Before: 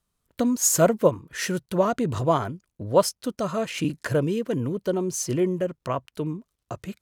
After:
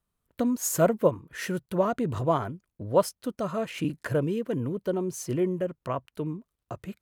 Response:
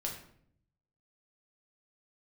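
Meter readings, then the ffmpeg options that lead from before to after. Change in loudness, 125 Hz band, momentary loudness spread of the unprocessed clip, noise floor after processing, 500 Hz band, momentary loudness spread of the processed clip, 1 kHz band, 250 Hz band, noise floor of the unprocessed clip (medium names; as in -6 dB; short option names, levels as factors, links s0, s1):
-3.5 dB, -3.0 dB, 12 LU, -84 dBFS, -3.0 dB, 11 LU, -3.5 dB, -3.0 dB, -81 dBFS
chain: -af "equalizer=f=5800:t=o:w=1.6:g=-7,volume=0.708"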